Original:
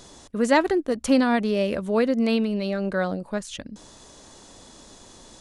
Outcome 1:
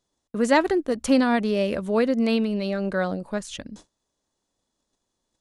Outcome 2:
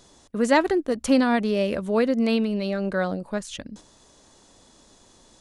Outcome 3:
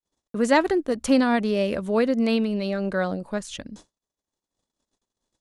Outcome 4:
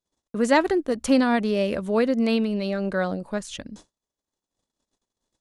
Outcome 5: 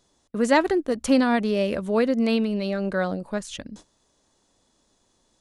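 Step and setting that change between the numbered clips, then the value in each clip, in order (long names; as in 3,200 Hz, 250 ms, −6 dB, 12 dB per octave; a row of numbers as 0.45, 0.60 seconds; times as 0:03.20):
noise gate, range: −31, −7, −58, −44, −19 decibels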